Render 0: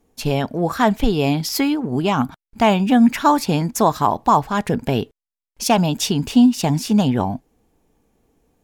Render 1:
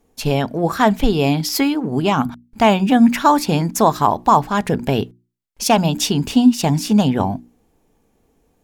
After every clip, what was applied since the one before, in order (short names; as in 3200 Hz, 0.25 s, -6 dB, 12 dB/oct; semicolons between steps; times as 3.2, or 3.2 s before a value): notches 60/120/180/240/300/360 Hz; gain +2 dB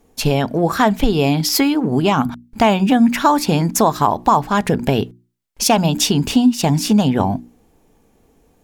compressor 2:1, threshold -20 dBFS, peak gain reduction 8 dB; gain +5.5 dB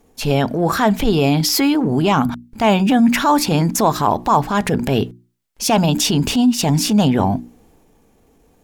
transient shaper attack -7 dB, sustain +3 dB; gain +1 dB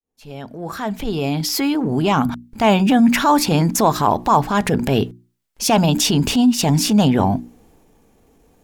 opening faded in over 2.51 s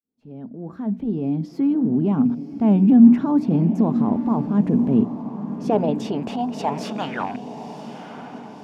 rattling part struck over -18 dBFS, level -26 dBFS; band-pass sweep 230 Hz -> 1600 Hz, 5.06–7.26; diffused feedback echo 1.02 s, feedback 52%, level -11 dB; gain +3.5 dB